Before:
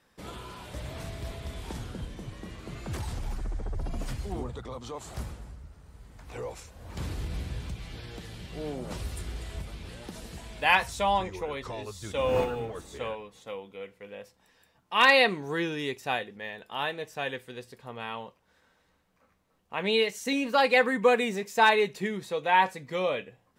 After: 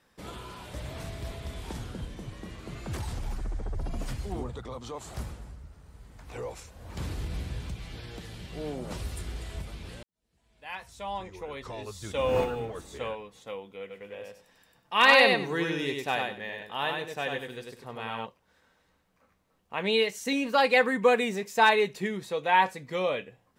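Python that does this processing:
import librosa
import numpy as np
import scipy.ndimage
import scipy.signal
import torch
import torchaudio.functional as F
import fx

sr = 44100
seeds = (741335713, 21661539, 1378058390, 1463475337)

y = fx.echo_feedback(x, sr, ms=97, feedback_pct=20, wet_db=-3.5, at=(13.89, 18.25), fade=0.02)
y = fx.edit(y, sr, fx.fade_in_span(start_s=10.03, length_s=1.9, curve='qua'), tone=tone)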